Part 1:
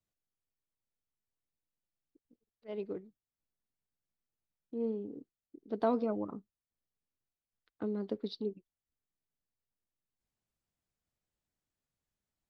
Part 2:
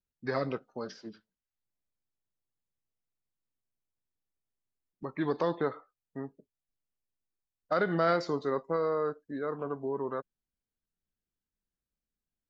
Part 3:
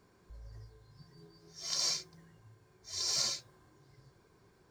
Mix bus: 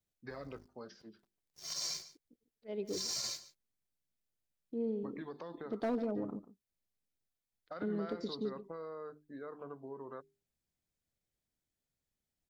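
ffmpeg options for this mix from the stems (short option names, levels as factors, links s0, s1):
-filter_complex "[0:a]equalizer=f=1100:t=o:w=0.86:g=-7.5,bandreject=f=2800:w=15,volume=20,asoftclip=hard,volume=0.0501,volume=1.06,asplit=2[s0][s1];[s1]volume=0.158[s2];[1:a]bandreject=f=50:t=h:w=6,bandreject=f=100:t=h:w=6,bandreject=f=150:t=h:w=6,bandreject=f=200:t=h:w=6,bandreject=f=250:t=h:w=6,bandreject=f=300:t=h:w=6,bandreject=f=350:t=h:w=6,bandreject=f=400:t=h:w=6,alimiter=limit=0.075:level=0:latency=1,acompressor=threshold=0.0251:ratio=6,volume=0.335[s3];[2:a]highshelf=f=12000:g=9.5,aeval=exprs='sgn(val(0))*max(abs(val(0))-0.00355,0)':c=same,volume=0.75,asplit=2[s4][s5];[s5]volume=0.112[s6];[s2][s6]amix=inputs=2:normalize=0,aecho=0:1:146:1[s7];[s0][s3][s4][s7]amix=inputs=4:normalize=0,alimiter=level_in=1.58:limit=0.0631:level=0:latency=1:release=56,volume=0.631"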